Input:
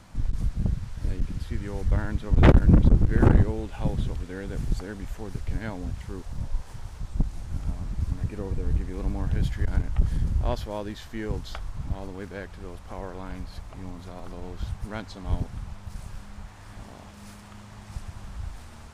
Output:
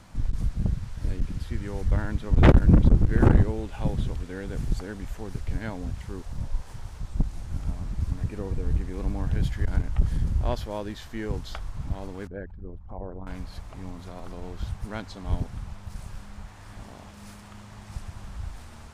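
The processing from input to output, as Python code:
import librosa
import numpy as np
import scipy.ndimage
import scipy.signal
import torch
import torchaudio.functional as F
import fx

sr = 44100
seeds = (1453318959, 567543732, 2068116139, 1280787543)

y = fx.envelope_sharpen(x, sr, power=2.0, at=(12.27, 13.27))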